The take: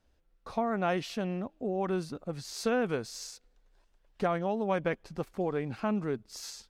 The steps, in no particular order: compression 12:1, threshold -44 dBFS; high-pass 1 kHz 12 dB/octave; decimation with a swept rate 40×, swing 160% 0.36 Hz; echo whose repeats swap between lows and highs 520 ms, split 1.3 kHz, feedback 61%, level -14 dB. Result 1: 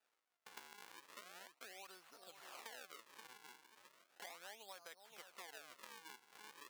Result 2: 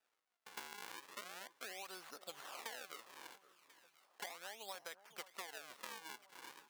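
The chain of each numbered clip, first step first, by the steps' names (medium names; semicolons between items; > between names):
echo whose repeats swap between lows and highs > decimation with a swept rate > compression > high-pass; decimation with a swept rate > high-pass > compression > echo whose repeats swap between lows and highs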